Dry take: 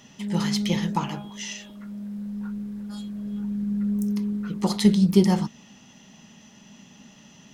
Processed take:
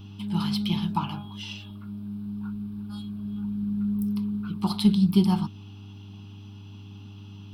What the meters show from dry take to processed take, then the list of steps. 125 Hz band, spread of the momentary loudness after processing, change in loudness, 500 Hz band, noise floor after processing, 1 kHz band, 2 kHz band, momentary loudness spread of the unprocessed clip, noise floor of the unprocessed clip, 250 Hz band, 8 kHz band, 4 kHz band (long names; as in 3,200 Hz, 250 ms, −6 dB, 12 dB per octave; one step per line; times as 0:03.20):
−1.0 dB, 22 LU, −2.0 dB, −9.5 dB, −43 dBFS, −1.5 dB, can't be measured, 16 LU, −52 dBFS, −2.0 dB, below −10 dB, −1.5 dB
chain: hum with harmonics 100 Hz, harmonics 4, −42 dBFS −6 dB per octave
phaser with its sweep stopped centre 1,900 Hz, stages 6